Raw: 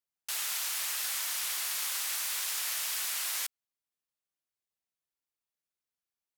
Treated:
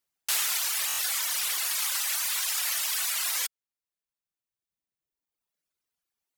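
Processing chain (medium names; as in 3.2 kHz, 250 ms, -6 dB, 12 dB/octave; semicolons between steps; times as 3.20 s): reverb removal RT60 1.9 s; 1.68–3.36 s: high-pass 520 Hz 24 dB/octave; buffer glitch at 0.87 s, samples 1024, times 4; trim +8.5 dB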